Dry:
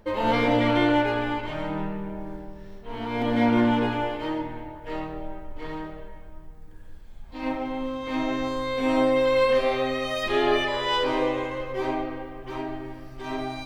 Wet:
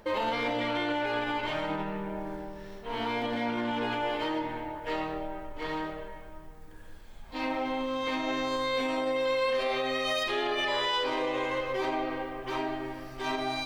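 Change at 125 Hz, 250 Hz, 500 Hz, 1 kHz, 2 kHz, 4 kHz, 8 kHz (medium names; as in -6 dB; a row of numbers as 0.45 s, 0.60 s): -10.0 dB, -8.0 dB, -5.5 dB, -3.5 dB, -2.5 dB, -0.5 dB, no reading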